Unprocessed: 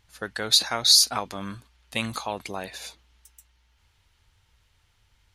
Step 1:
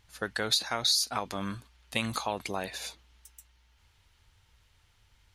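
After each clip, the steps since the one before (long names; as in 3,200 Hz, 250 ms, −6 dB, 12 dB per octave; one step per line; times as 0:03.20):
downward compressor 4 to 1, threshold −25 dBFS, peak gain reduction 11 dB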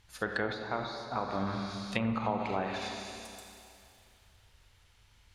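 four-comb reverb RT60 2.6 s, combs from 31 ms, DRR 2 dB
treble cut that deepens with the level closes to 1,200 Hz, closed at −26 dBFS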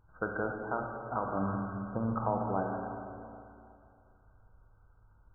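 linear-phase brick-wall low-pass 1,600 Hz
rectangular room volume 700 cubic metres, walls mixed, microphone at 0.57 metres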